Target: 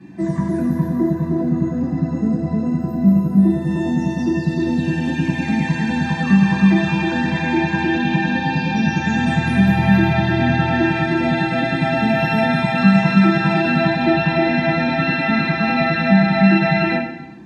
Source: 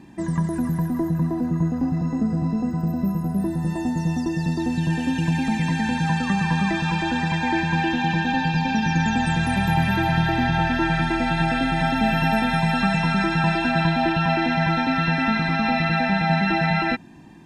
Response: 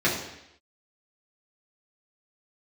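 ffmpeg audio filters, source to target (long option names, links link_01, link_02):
-filter_complex "[1:a]atrim=start_sample=2205[link_01];[0:a][link_01]afir=irnorm=-1:irlink=0,volume=-11.5dB"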